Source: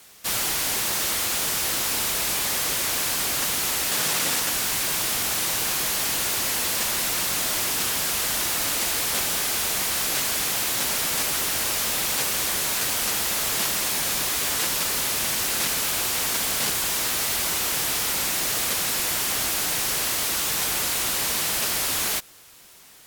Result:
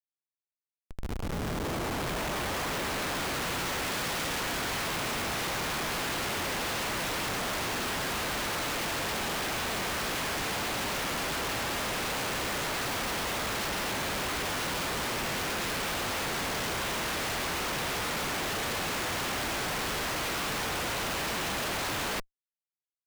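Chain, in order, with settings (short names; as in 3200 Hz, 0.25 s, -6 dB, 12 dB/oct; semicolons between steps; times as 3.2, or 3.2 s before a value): opening faded in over 3.69 s; LPF 2300 Hz 6 dB/oct; Schmitt trigger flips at -34 dBFS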